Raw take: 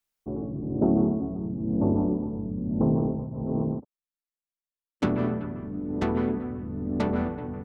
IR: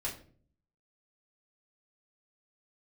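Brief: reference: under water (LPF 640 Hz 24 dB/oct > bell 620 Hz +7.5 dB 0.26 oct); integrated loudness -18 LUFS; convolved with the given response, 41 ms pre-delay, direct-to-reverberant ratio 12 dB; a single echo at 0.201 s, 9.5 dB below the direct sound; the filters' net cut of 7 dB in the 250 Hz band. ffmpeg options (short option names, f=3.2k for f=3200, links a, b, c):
-filter_complex "[0:a]equalizer=f=250:t=o:g=-9,aecho=1:1:201:0.335,asplit=2[a][b];[1:a]atrim=start_sample=2205,adelay=41[c];[b][c]afir=irnorm=-1:irlink=0,volume=-14.5dB[d];[a][d]amix=inputs=2:normalize=0,lowpass=f=640:w=0.5412,lowpass=f=640:w=1.3066,equalizer=f=620:t=o:w=0.26:g=7.5,volume=13.5dB"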